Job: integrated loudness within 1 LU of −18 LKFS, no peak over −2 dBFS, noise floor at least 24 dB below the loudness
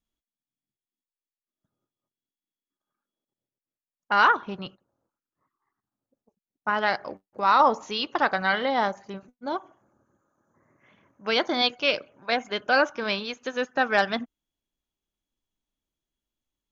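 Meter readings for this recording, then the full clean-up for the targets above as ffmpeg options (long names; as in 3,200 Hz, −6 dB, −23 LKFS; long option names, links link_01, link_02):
integrated loudness −24.5 LKFS; sample peak −7.5 dBFS; target loudness −18.0 LKFS
→ -af "volume=6.5dB,alimiter=limit=-2dB:level=0:latency=1"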